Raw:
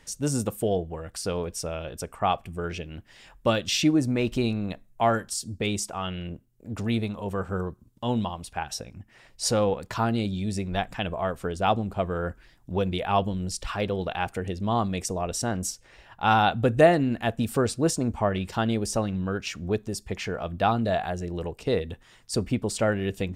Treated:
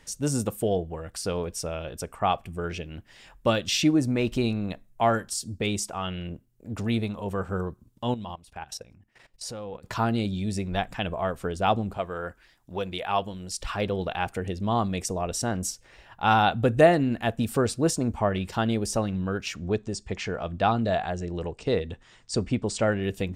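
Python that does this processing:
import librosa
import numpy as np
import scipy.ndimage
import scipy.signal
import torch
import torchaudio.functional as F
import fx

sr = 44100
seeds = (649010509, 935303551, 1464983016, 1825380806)

y = fx.level_steps(x, sr, step_db=18, at=(8.14, 9.84))
y = fx.low_shelf(y, sr, hz=380.0, db=-10.5, at=(11.97, 13.6))
y = fx.steep_lowpass(y, sr, hz=8600.0, slope=48, at=(19.55, 23.03))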